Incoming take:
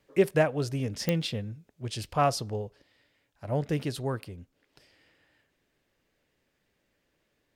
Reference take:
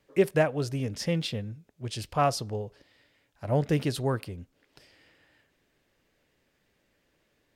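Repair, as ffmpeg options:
-af "adeclick=t=4,asetnsamples=n=441:p=0,asendcmd='2.67 volume volume 3.5dB',volume=0dB"

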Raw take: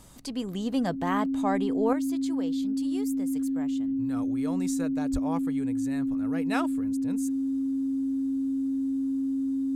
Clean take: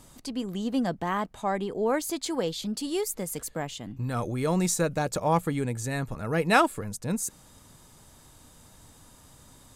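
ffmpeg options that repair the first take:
-filter_complex "[0:a]bandreject=f=64.4:t=h:w=4,bandreject=f=128.8:t=h:w=4,bandreject=f=193.2:t=h:w=4,bandreject=f=270:w=30,asplit=3[a][b][c];[a]afade=t=out:st=5.12:d=0.02[d];[b]highpass=f=140:w=0.5412,highpass=f=140:w=1.3066,afade=t=in:st=5.12:d=0.02,afade=t=out:st=5.24:d=0.02[e];[c]afade=t=in:st=5.24:d=0.02[f];[d][e][f]amix=inputs=3:normalize=0,asetnsamples=n=441:p=0,asendcmd='1.93 volume volume 10dB',volume=0dB"

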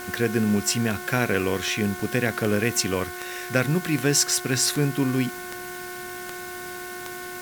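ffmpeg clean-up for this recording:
-af "adeclick=t=4,bandreject=f=360:t=h:w=4,bandreject=f=720:t=h:w=4,bandreject=f=1.08k:t=h:w=4,bandreject=f=1.44k:t=h:w=4,bandreject=f=1.8k:t=h:w=4,bandreject=f=2.16k:t=h:w=4,bandreject=f=1.5k:w=30,afwtdn=0.0089"

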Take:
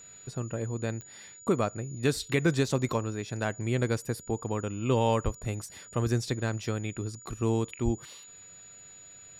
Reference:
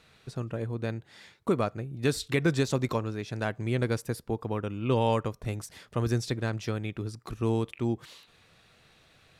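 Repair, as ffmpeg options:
-filter_complex "[0:a]adeclick=t=4,bandreject=f=6.9k:w=30,asplit=3[a][b][c];[a]afade=t=out:st=5.24:d=0.02[d];[b]highpass=f=140:w=0.5412,highpass=f=140:w=1.3066,afade=t=in:st=5.24:d=0.02,afade=t=out:st=5.36:d=0.02[e];[c]afade=t=in:st=5.36:d=0.02[f];[d][e][f]amix=inputs=3:normalize=0,asplit=3[g][h][i];[g]afade=t=out:st=7.84:d=0.02[j];[h]highpass=f=140:w=0.5412,highpass=f=140:w=1.3066,afade=t=in:st=7.84:d=0.02,afade=t=out:st=7.96:d=0.02[k];[i]afade=t=in:st=7.96:d=0.02[l];[j][k][l]amix=inputs=3:normalize=0"

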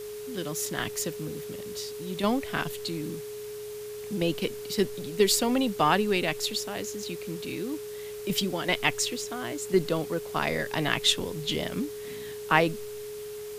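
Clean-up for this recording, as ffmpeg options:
-af "bandreject=f=45.1:t=h:w=4,bandreject=f=90.2:t=h:w=4,bandreject=f=135.3:t=h:w=4,bandreject=f=180.4:t=h:w=4,bandreject=f=225.5:t=h:w=4,bandreject=f=420:w=30,afwtdn=0.0045"

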